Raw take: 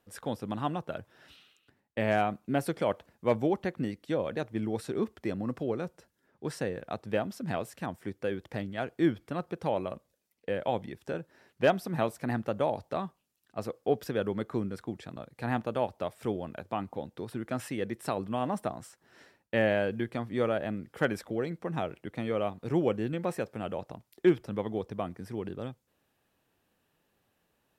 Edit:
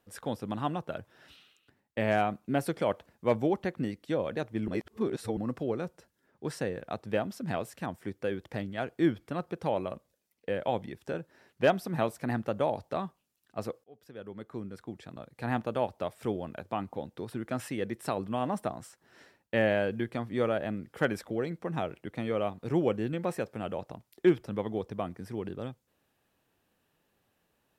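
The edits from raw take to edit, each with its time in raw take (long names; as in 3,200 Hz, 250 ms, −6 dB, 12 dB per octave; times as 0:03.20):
0:04.68–0:05.37: reverse
0:13.84–0:15.56: fade in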